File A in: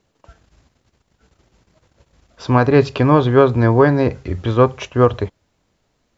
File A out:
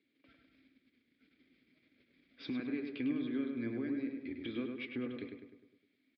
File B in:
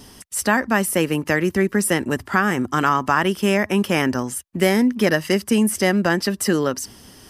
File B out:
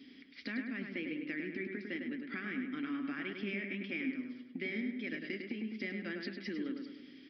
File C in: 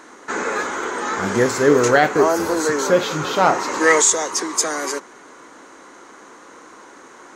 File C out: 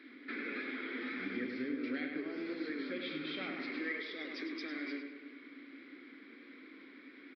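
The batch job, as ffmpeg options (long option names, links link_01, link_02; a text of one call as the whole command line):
ffmpeg -i in.wav -filter_complex "[0:a]asplit=3[link_01][link_02][link_03];[link_01]bandpass=frequency=270:width_type=q:width=8,volume=0dB[link_04];[link_02]bandpass=frequency=2290:width_type=q:width=8,volume=-6dB[link_05];[link_03]bandpass=frequency=3010:width_type=q:width=8,volume=-9dB[link_06];[link_04][link_05][link_06]amix=inputs=3:normalize=0,lowshelf=frequency=370:gain=-10,bandreject=frequency=3000:width=6.8,acompressor=threshold=-45dB:ratio=4,aresample=11025,aresample=44100,flanger=delay=2.2:depth=6.6:regen=72:speed=1.5:shape=triangular,equalizer=frequency=830:width=7.8:gain=8,asplit=2[link_07][link_08];[link_08]adelay=102,lowpass=frequency=3000:poles=1,volume=-4.5dB,asplit=2[link_09][link_10];[link_10]adelay=102,lowpass=frequency=3000:poles=1,volume=0.53,asplit=2[link_11][link_12];[link_12]adelay=102,lowpass=frequency=3000:poles=1,volume=0.53,asplit=2[link_13][link_14];[link_14]adelay=102,lowpass=frequency=3000:poles=1,volume=0.53,asplit=2[link_15][link_16];[link_16]adelay=102,lowpass=frequency=3000:poles=1,volume=0.53,asplit=2[link_17][link_18];[link_18]adelay=102,lowpass=frequency=3000:poles=1,volume=0.53,asplit=2[link_19][link_20];[link_20]adelay=102,lowpass=frequency=3000:poles=1,volume=0.53[link_21];[link_09][link_11][link_13][link_15][link_17][link_19][link_21]amix=inputs=7:normalize=0[link_22];[link_07][link_22]amix=inputs=2:normalize=0,volume=10dB" out.wav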